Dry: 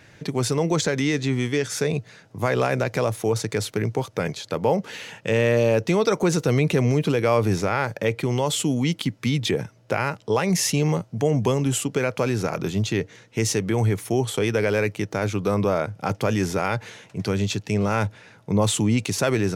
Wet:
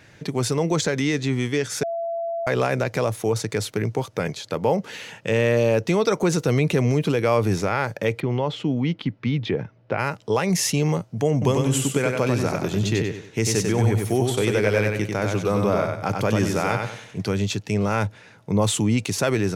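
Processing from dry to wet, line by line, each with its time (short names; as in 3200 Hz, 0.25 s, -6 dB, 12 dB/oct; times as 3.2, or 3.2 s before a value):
1.83–2.47 bleep 673 Hz -24 dBFS
8.2–9.99 air absorption 290 m
11.32–17.19 feedback echo 95 ms, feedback 33%, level -4 dB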